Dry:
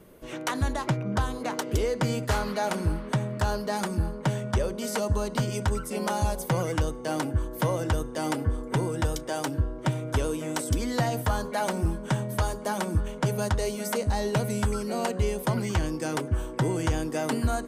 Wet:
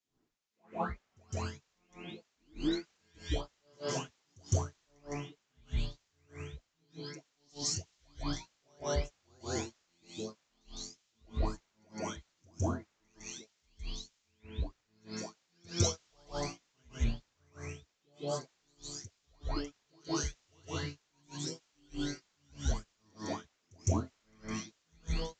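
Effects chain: spectral delay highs late, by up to 0.439 s; high shelf 3500 Hz +10 dB; de-hum 181.2 Hz, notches 28; grains 0.257 s, grains 2.3/s, spray 14 ms, pitch spread up and down by 0 st; wide varispeed 0.696×; requantised 10-bit, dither triangular; pre-echo 0.157 s -19 dB; downsampling 16000 Hz; three-band expander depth 70%; gain -7.5 dB

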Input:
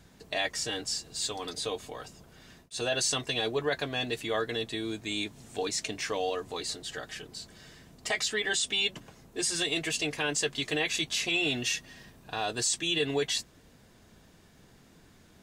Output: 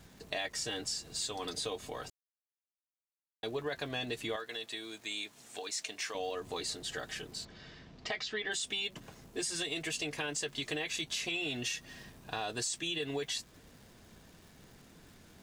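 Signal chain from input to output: compressor 4:1, threshold -34 dBFS, peak gain reduction 9 dB; 4.36–6.15 HPF 900 Hz 6 dB/oct; crackle 490/s -52 dBFS; 2.1–3.43 mute; 7.45–8.52 LPF 5100 Hz 24 dB/oct

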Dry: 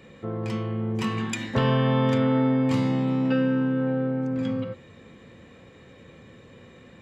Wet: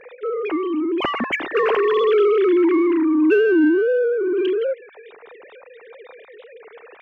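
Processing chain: sine-wave speech; in parallel at -9.5 dB: soft clip -28.5 dBFS, distortion -9 dB; on the sum: record warp 33 1/3 rpm, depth 100 cents; gain +5 dB

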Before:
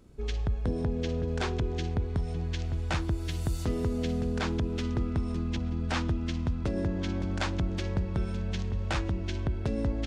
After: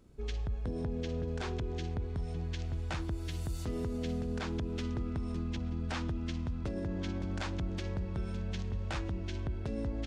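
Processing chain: limiter -22.5 dBFS, peak gain reduction 4 dB; gain -4.5 dB

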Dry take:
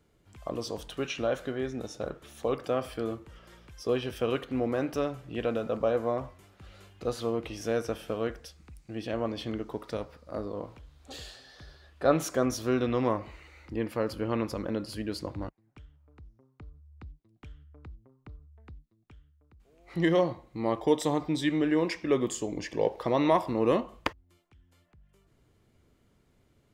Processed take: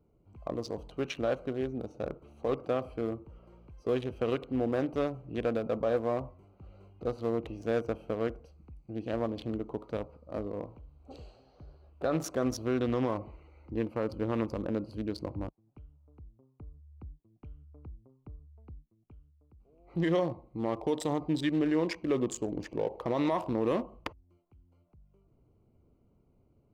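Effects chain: Wiener smoothing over 25 samples; limiter -19.5 dBFS, peak gain reduction 10 dB

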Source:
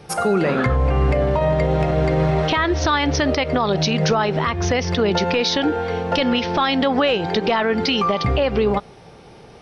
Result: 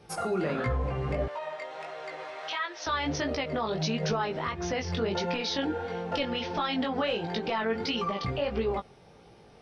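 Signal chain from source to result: 1.26–2.87 HPF 920 Hz 12 dB/oct; chorus 1.5 Hz, delay 17 ms, depth 5.5 ms; gain -8 dB

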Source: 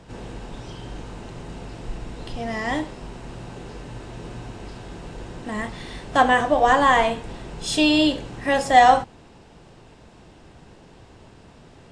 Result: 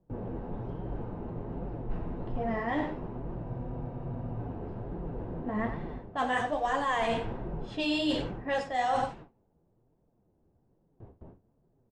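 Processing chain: low-pass opened by the level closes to 540 Hz, open at -13.5 dBFS; echo 95 ms -13.5 dB; flange 1.2 Hz, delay 5.1 ms, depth 8 ms, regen -20%; reverse; compressor 8:1, threshold -30 dBFS, peak gain reduction 18.5 dB; reverse; gate with hold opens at -41 dBFS; spectral freeze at 3.46, 0.91 s; gain +3.5 dB

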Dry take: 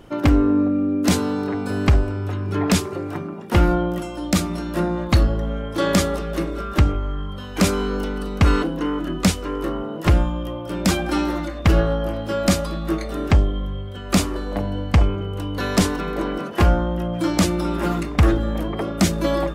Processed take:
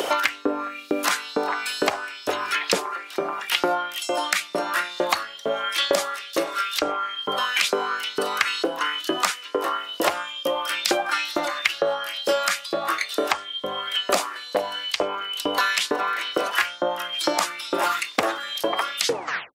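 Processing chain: tape stop at the end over 0.53 s; LFO high-pass saw up 2.2 Hz 440–5100 Hz; three-band squash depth 100%; gain +1.5 dB

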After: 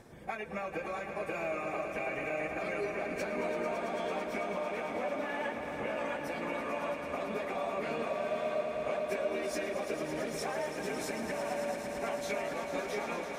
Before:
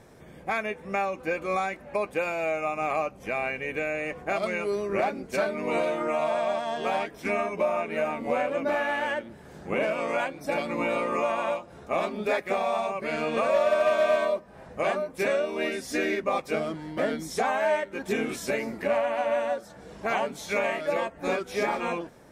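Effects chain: compressor 16:1, threshold -30 dBFS, peak gain reduction 12 dB; plain phase-vocoder stretch 0.6×; swelling echo 0.111 s, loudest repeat 5, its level -10.5 dB

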